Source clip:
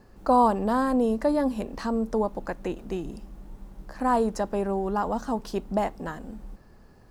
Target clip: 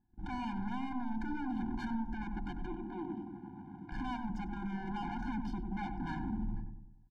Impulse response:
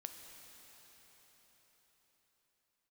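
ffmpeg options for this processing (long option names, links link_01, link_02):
-filter_complex "[0:a]agate=range=-35dB:threshold=-45dB:ratio=16:detection=peak,acompressor=threshold=-46dB:ratio=2,alimiter=level_in=13dB:limit=-24dB:level=0:latency=1:release=25,volume=-13dB,aeval=exprs='0.0141*sin(PI/2*2*val(0)/0.0141)':channel_layout=same,adynamicsmooth=sensitivity=6.5:basefreq=1500,asettb=1/sr,asplit=3[link_01][link_02][link_03];[link_01]atrim=end=2.664[link_04];[link_02]atrim=start=2.66:end=3.92,asetpts=PTS-STARTPTS,afade=type=in:duration=0.004:curve=qsin,afade=type=out:start_time=1.256:duration=0.004:curve=qsin,highpass=240,lowpass=3300[link_05];[link_03]atrim=start=3.916[link_06];[link_04][link_05]acrossfade=duration=0.004:curve1=hsin:curve2=qsin[link_07];[link_07][link_06]acrossfade=duration=0.004:curve1=qsin:curve2=hsin,asplit=2[link_08][link_09];[link_09]adelay=96,lowpass=frequency=820:poles=1,volume=-4dB,asplit=2[link_10][link_11];[link_11]adelay=96,lowpass=frequency=820:poles=1,volume=0.53,asplit=2[link_12][link_13];[link_13]adelay=96,lowpass=frequency=820:poles=1,volume=0.53,asplit=2[link_14][link_15];[link_15]adelay=96,lowpass=frequency=820:poles=1,volume=0.53,asplit=2[link_16][link_17];[link_17]adelay=96,lowpass=frequency=820:poles=1,volume=0.53,asplit=2[link_18][link_19];[link_19]adelay=96,lowpass=frequency=820:poles=1,volume=0.53,asplit=2[link_20][link_21];[link_21]adelay=96,lowpass=frequency=820:poles=1,volume=0.53[link_22];[link_08][link_10][link_12][link_14][link_16][link_18][link_20][link_22]amix=inputs=8:normalize=0,afftfilt=real='re*eq(mod(floor(b*sr/1024/350),2),0)':imag='im*eq(mod(floor(b*sr/1024/350),2),0)':win_size=1024:overlap=0.75,volume=4dB"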